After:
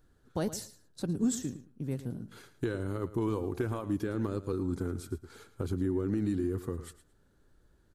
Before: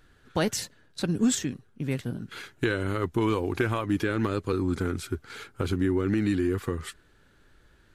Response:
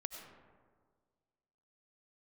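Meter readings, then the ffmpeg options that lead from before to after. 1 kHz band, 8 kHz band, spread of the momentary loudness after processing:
−10.0 dB, −7.5 dB, 11 LU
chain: -af "equalizer=frequency=2400:width_type=o:width=1.8:gain=-13,aecho=1:1:111|222:0.188|0.032,volume=-5dB"

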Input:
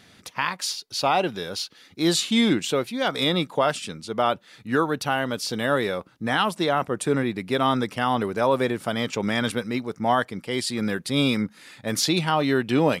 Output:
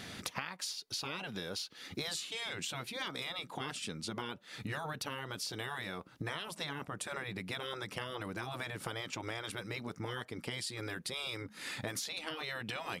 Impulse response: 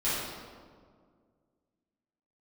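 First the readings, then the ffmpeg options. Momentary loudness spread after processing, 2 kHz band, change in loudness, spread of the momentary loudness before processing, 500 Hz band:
3 LU, −12.0 dB, −15.5 dB, 7 LU, −20.0 dB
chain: -af "afftfilt=real='re*lt(hypot(re,im),0.224)':imag='im*lt(hypot(re,im),0.224)':win_size=1024:overlap=0.75,acompressor=threshold=-43dB:ratio=16,volume=6.5dB"

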